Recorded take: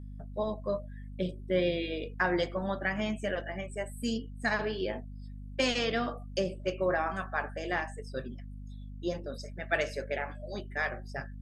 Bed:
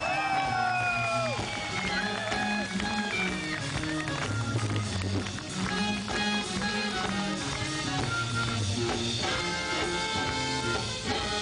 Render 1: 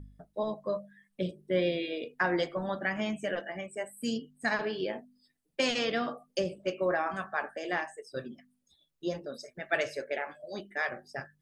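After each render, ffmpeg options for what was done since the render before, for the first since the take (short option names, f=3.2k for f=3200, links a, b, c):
-af "bandreject=f=50:t=h:w=4,bandreject=f=100:t=h:w=4,bandreject=f=150:t=h:w=4,bandreject=f=200:t=h:w=4,bandreject=f=250:t=h:w=4"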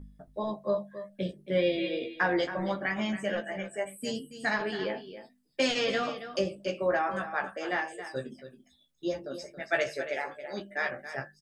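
-filter_complex "[0:a]asplit=2[a][b];[b]adelay=15,volume=-4dB[c];[a][c]amix=inputs=2:normalize=0,aecho=1:1:276:0.251"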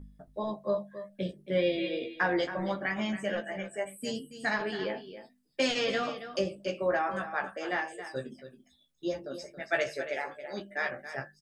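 -af "volume=-1dB"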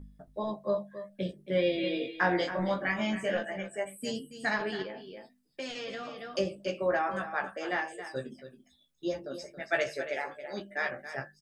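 -filter_complex "[0:a]asettb=1/sr,asplit=3[a][b][c];[a]atrim=end=1.814[d];[b]atrim=start=1.81:end=3.49,asetpts=PTS-STARTPTS,afade=t=in:d=0.004:c=qsin,afade=t=out:st=1.676:d=0.004:c=qsin,asplit=2[e][f];[f]adelay=22,volume=-2.5dB[g];[e][g]amix=inputs=2:normalize=0,atrim=end_sample=74088[h];[c]atrim=start=3.486[i];[d][h]acrossfade=d=0.004:c1=hsin:c2=qsin[j];[j][i]acrossfade=d=0.004:c1=qsin:c2=hsin,asettb=1/sr,asplit=3[k][l][m];[k]atrim=end=4.824[n];[l]atrim=start=4.82:end=6.19,asetpts=PTS-STARTPTS,afade=t=in:d=0.004:c=qsin,afade=t=out:st=1.366:d=0.004:c=qsin,acompressor=threshold=-40dB:ratio=2.5:attack=3.2:release=140:knee=1:detection=peak[o];[m]atrim=start=6.186[p];[n][o]acrossfade=d=0.004:c1=hsin:c2=qsin[q];[q][p]acrossfade=d=0.004:c1=qsin:c2=hsin"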